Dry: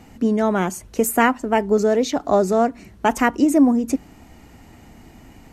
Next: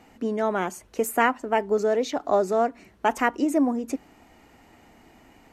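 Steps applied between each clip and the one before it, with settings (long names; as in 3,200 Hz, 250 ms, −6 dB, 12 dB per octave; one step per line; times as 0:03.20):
bass and treble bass −11 dB, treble −5 dB
level −3.5 dB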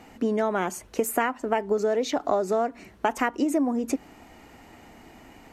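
downward compressor 6 to 1, threshold −25 dBFS, peak gain reduction 10.5 dB
level +4.5 dB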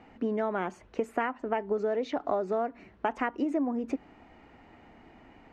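low-pass filter 2,800 Hz 12 dB per octave
level −5 dB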